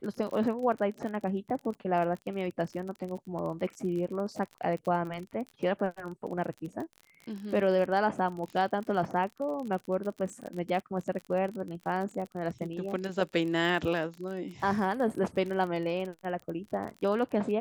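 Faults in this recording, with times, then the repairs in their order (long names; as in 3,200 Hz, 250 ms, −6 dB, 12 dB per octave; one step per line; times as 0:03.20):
surface crackle 41 per second −36 dBFS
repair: click removal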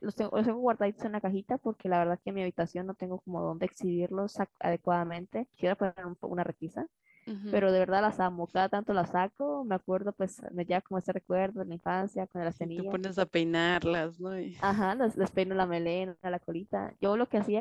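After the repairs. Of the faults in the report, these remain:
none of them is left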